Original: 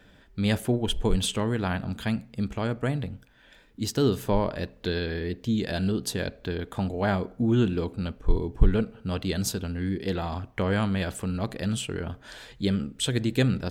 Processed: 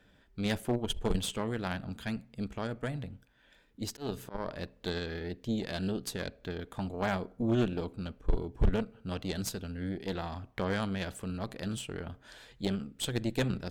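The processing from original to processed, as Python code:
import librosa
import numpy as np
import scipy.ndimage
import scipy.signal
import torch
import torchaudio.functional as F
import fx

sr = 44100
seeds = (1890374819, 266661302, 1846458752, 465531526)

y = fx.cheby_harmonics(x, sr, harmonics=(2, 3, 6), levels_db=(-9, -13, -45), full_scale_db=-6.5)
y = fx.auto_swell(y, sr, attack_ms=241.0, at=(3.8, 4.48))
y = np.clip(10.0 ** (20.5 / 20.0) * y, -1.0, 1.0) / 10.0 ** (20.5 / 20.0)
y = y * librosa.db_to_amplitude(1.5)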